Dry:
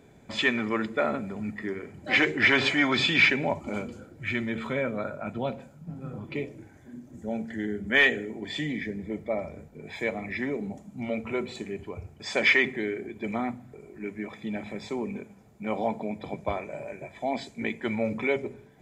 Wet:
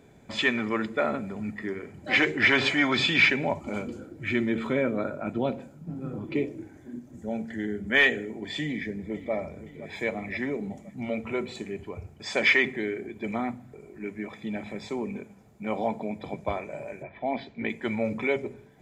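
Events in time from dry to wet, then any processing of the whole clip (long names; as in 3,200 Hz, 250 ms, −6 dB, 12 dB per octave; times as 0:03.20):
0:03.87–0:06.99: parametric band 320 Hz +8.5 dB 0.87 octaves
0:08.62–0:09.33: delay throw 520 ms, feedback 60%, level −14 dB
0:17.02–0:17.68: low-pass filter 2,600 Hz → 4,300 Hz 24 dB per octave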